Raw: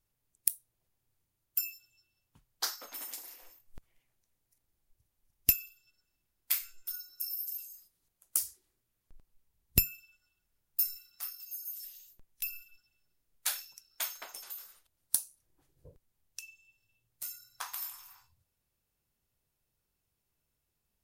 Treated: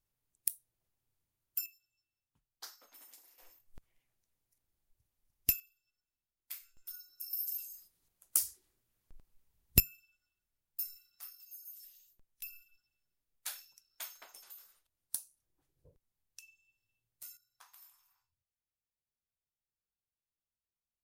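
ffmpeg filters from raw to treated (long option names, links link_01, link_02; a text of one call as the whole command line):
ffmpeg -i in.wav -af "asetnsamples=nb_out_samples=441:pad=0,asendcmd='1.66 volume volume -15dB;3.38 volume volume -4.5dB;5.6 volume volume -15dB;6.77 volume volume -7.5dB;7.33 volume volume 0.5dB;9.8 volume volume -9dB;17.37 volume volume -19.5dB',volume=-5dB" out.wav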